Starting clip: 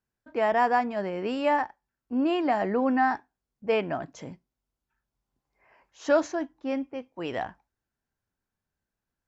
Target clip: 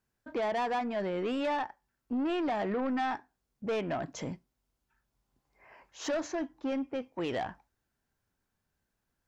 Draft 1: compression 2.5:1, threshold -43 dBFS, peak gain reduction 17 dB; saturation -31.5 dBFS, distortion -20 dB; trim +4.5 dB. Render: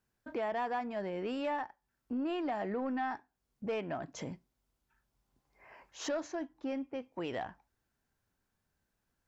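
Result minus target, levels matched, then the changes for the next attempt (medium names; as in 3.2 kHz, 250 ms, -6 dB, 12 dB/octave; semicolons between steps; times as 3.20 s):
compression: peak gain reduction +6.5 dB
change: compression 2.5:1, threshold -32 dBFS, peak gain reduction 10.5 dB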